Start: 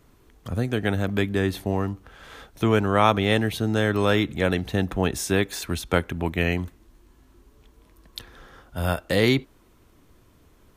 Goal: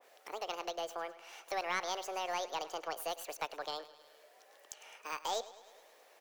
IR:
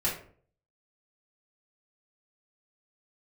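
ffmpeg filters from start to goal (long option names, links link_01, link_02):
-af "highpass=frequency=280:width=0.5412,highpass=frequency=280:width=1.3066,acompressor=threshold=-58dB:ratio=1.5,aeval=exprs='(tanh(8.91*val(0)+0.35)-tanh(0.35))/8.91':channel_layout=same,aecho=1:1:182|364|546|728|910|1092:0.141|0.0848|0.0509|0.0305|0.0183|0.011,asetrate=76440,aresample=44100,adynamicequalizer=threshold=0.002:dfrequency=2000:dqfactor=0.7:tfrequency=2000:tqfactor=0.7:attack=5:release=100:ratio=0.375:range=1.5:mode=cutabove:tftype=highshelf,volume=1dB"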